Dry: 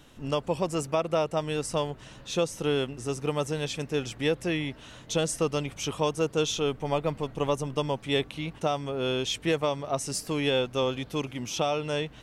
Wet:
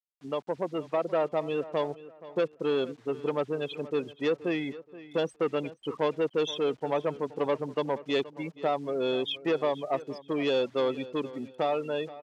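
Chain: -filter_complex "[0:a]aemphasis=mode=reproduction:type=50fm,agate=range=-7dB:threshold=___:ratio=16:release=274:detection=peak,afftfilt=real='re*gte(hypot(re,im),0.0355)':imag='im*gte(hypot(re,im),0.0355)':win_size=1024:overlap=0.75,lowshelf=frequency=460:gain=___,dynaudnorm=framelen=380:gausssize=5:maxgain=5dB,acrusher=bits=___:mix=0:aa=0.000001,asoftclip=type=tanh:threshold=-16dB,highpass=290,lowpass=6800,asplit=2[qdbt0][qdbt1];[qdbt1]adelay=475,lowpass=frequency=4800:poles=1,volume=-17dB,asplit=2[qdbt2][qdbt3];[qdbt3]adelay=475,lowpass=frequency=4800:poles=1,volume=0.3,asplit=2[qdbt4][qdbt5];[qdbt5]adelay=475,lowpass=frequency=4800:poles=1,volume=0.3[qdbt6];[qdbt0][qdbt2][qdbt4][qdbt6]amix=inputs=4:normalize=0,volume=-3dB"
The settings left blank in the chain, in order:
-35dB, 2.5, 8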